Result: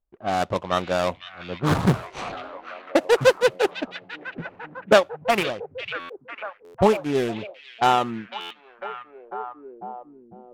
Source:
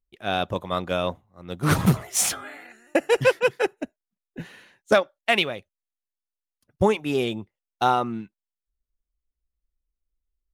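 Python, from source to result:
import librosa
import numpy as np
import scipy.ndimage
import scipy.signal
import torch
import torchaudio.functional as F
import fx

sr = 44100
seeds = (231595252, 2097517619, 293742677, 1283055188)

p1 = scipy.ndimage.median_filter(x, 25, mode='constant')
p2 = fx.low_shelf(p1, sr, hz=470.0, db=-8.0)
p3 = fx.rider(p2, sr, range_db=3, speed_s=2.0)
p4 = p2 + (p3 * 10.0 ** (0.5 / 20.0))
p5 = fx.env_lowpass(p4, sr, base_hz=1100.0, full_db=-18.0)
p6 = p5 + fx.echo_stepped(p5, sr, ms=500, hz=2800.0, octaves=-0.7, feedback_pct=70, wet_db=-6.5, dry=0)
p7 = fx.buffer_glitch(p6, sr, at_s=(5.99, 6.64, 8.4), block=512, repeats=8)
y = fx.doppler_dist(p7, sr, depth_ms=0.45)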